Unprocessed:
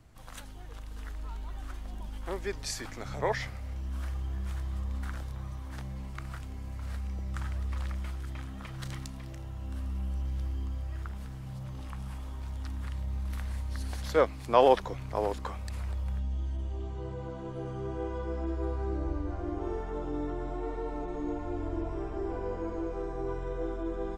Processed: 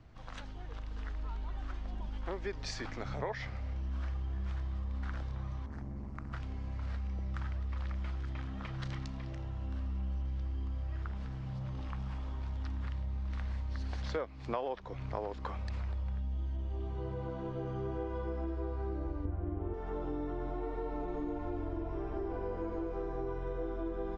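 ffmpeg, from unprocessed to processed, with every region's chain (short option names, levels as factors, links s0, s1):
-filter_complex "[0:a]asettb=1/sr,asplit=3[s0][s1][s2];[s0]atrim=end=5.664[s3];[s1]atrim=start=5.66:end=6.33,asetpts=PTS-STARTPTS,afade=t=in:d=0.004:c=qsin,afade=t=out:st=0.666:d=0.004:c=qsin,equalizer=f=3300:t=o:w=1.2:g=-13.5,tremolo=f=150:d=0.889[s4];[s2]atrim=start=6.326[s5];[s3][s4]acrossfade=d=0.004:c1=hsin:c2=qsin[s6];[s6][s5]acrossfade=d=0.004:c1=qsin:c2=hsin,asettb=1/sr,asplit=3[s7][s8][s9];[s7]atrim=end=19.254[s10];[s8]atrim=start=19.25:end=19.74,asetpts=PTS-STARTPTS,afade=t=in:d=0.004:c=qsin,afade=t=out:st=0.486:d=0.004:c=qsin,lowpass=f=3100:w=0.5412,lowpass=f=3100:w=1.3066,equalizer=f=110:t=o:w=2.3:g=13[s11];[s9]atrim=start=19.736[s12];[s10][s11]acrossfade=d=0.004:c1=hsin:c2=qsin[s13];[s13][s12]acrossfade=d=0.004:c1=qsin:c2=hsin,lowpass=f=5900:w=0.5412,lowpass=f=5900:w=1.3066,highshelf=f=4500:g=-7,acompressor=threshold=0.02:ratio=8,volume=1.12"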